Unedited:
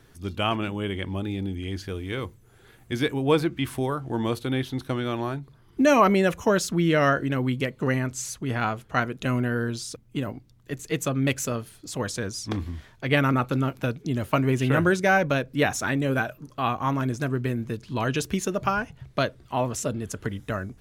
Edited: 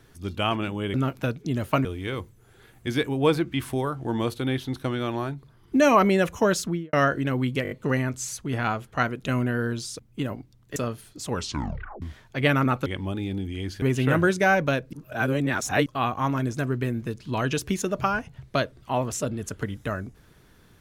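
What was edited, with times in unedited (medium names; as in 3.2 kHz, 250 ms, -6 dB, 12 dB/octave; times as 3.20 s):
0.94–1.90 s: swap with 13.54–14.45 s
6.65–6.98 s: studio fade out
7.68 s: stutter 0.02 s, 5 plays
10.73–11.44 s: delete
11.97 s: tape stop 0.73 s
15.56–16.49 s: reverse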